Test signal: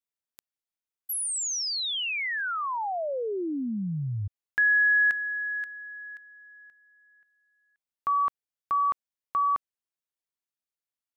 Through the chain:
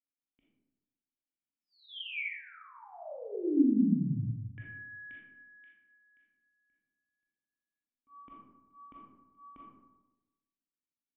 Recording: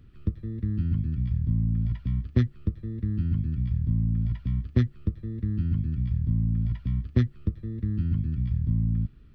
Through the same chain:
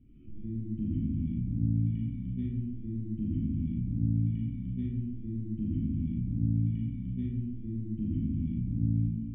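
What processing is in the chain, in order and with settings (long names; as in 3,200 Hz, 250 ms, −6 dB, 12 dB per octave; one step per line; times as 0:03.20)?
low-pass that shuts in the quiet parts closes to 2,300 Hz
formant resonators in series i
volume swells 106 ms
comb and all-pass reverb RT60 1.1 s, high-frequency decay 0.4×, pre-delay 0 ms, DRR −6 dB
level +2 dB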